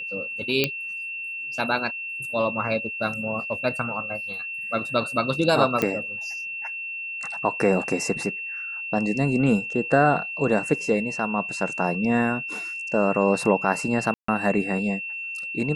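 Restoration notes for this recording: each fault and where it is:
whistle 2,700 Hz −30 dBFS
0:00.64: click −6 dBFS
0:05.82: click −9 dBFS
0:14.14–0:14.28: drop-out 144 ms

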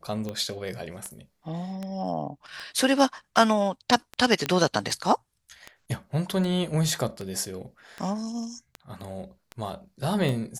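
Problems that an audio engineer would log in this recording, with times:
scratch tick 78 rpm −20 dBFS
0:04.46: click −11 dBFS

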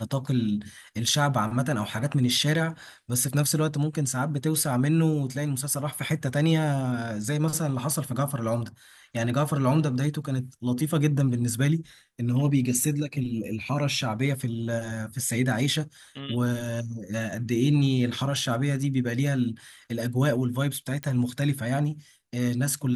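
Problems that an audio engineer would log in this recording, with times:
0:21.03: click −19 dBFS

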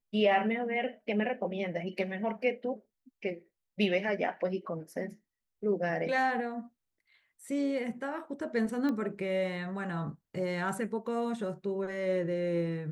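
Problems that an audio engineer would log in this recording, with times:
0:08.89: click −23 dBFS

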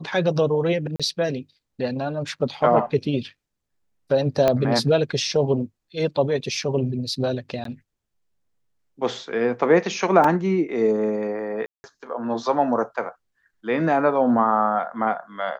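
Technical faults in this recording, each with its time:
0:00.96–0:01.00: drop-out 36 ms
0:04.48: click −7 dBFS
0:07.64–0:07.65: drop-out 13 ms
0:10.24: drop-out 3.6 ms
0:11.66–0:11.84: drop-out 180 ms

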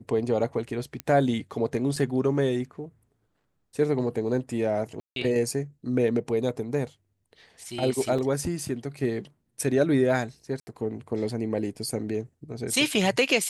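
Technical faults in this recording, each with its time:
0:01.00: click −15 dBFS
0:01.96: drop-out 3.1 ms
0:05.00–0:05.16: drop-out 162 ms
0:08.18: drop-out 4.8 ms
0:10.60–0:10.67: drop-out 70 ms

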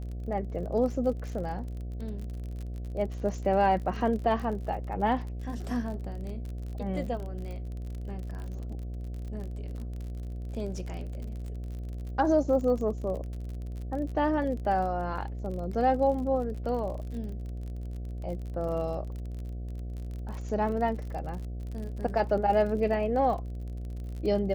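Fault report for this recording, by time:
mains buzz 60 Hz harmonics 12 −36 dBFS
surface crackle 39 per second −37 dBFS

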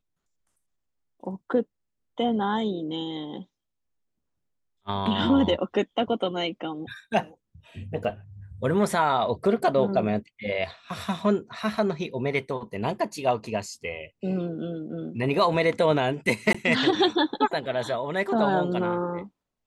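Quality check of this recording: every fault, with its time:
0:08.04: drop-out 4.8 ms
0:16.53–0:16.55: drop-out 15 ms

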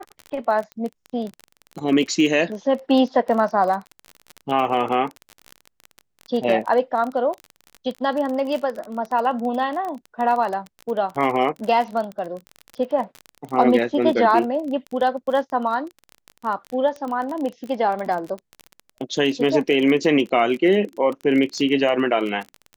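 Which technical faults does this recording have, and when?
surface crackle 29 per second −26 dBFS

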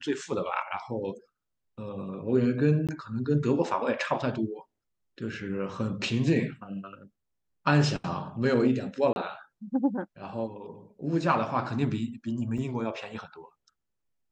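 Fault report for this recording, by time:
0:02.87–0:02.89: drop-out 17 ms
0:09.13–0:09.16: drop-out 31 ms
0:12.58: drop-out 3.3 ms

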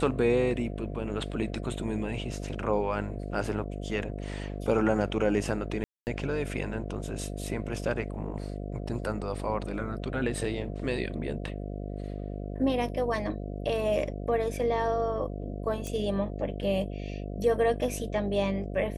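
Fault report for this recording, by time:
mains buzz 50 Hz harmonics 14 −36 dBFS
0:05.84–0:06.07: drop-out 229 ms
0:15.87: click −22 dBFS

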